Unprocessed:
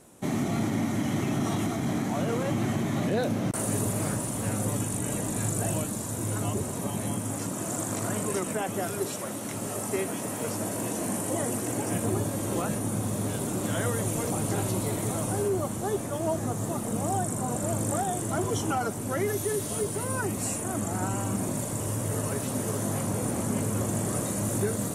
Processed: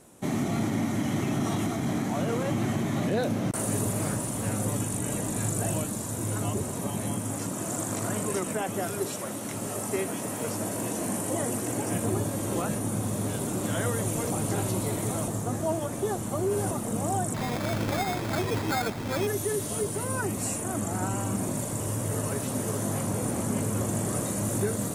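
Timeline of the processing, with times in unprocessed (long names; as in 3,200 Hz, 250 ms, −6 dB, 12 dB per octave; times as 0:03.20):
0:15.28–0:16.71: reverse
0:17.34–0:19.27: sample-rate reduction 2,900 Hz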